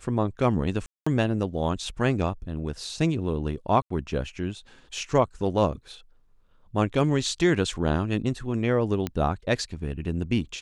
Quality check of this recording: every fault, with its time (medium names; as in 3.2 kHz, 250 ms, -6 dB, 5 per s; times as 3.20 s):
0.86–1.06 s: dropout 205 ms
3.82–3.90 s: dropout 84 ms
9.07 s: pop -14 dBFS